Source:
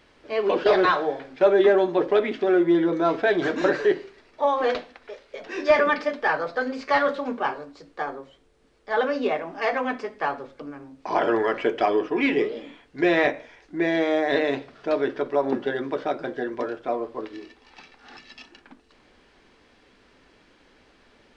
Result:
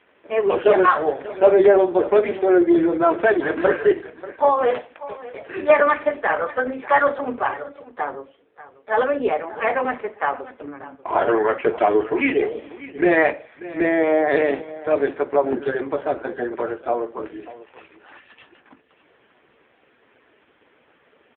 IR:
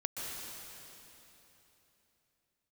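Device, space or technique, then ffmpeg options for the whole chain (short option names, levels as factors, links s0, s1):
satellite phone: -af "highpass=310,lowpass=3100,aecho=1:1:589:0.141,volume=2" -ar 8000 -c:a libopencore_amrnb -b:a 5150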